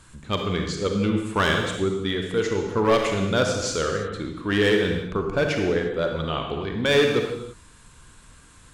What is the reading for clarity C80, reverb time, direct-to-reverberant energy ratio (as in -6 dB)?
5.5 dB, not exponential, 2.5 dB